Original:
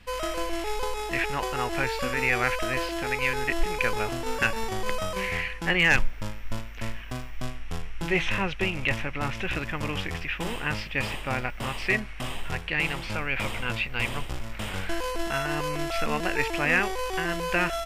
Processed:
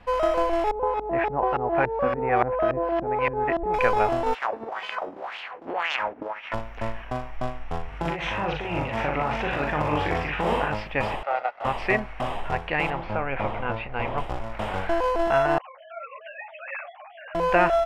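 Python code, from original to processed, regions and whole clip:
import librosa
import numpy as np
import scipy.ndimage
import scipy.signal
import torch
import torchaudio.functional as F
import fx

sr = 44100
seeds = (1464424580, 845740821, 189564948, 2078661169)

y = fx.chain(x, sr, fx.highpass(hz=50.0, slope=12),
    fx.filter_lfo_lowpass(shape='saw_up', hz=3.5, low_hz=260.0, high_hz=3700.0, q=0.71), at=(0.71, 3.74))
y = fx.spec_clip(y, sr, under_db=28, at=(4.33, 6.53), fade=0.02)
y = fx.wah_lfo(y, sr, hz=1.9, low_hz=270.0, high_hz=3000.0, q=3.5, at=(4.33, 6.53), fade=0.02)
y = fx.chain(y, sr, fx.highpass(hz=53.0, slope=12),
    fx.over_compress(threshold_db=-32.0, ratio=-1.0),
    fx.echo_multitap(ms=(40, 60, 379), db=(-3.5, -6.0, -13.0)), at=(7.88, 10.73))
y = fx.chain(y, sr, fx.lower_of_two(delay_ms=1.5),
    fx.highpass(hz=610.0, slope=12),
    fx.spacing_loss(db_at_10k=25), at=(11.23, 11.65))
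y = fx.chain(y, sr, fx.spacing_loss(db_at_10k=22),
    fx.doubler(ms=29.0, db=-13.5), at=(12.9, 14.18))
y = fx.chain(y, sr, fx.sine_speech(),
    fx.differentiator(),
    fx.ensemble(), at=(15.58, 17.35))
y = fx.lowpass(y, sr, hz=2100.0, slope=6)
y = fx.peak_eq(y, sr, hz=750.0, db=13.0, octaves=1.5)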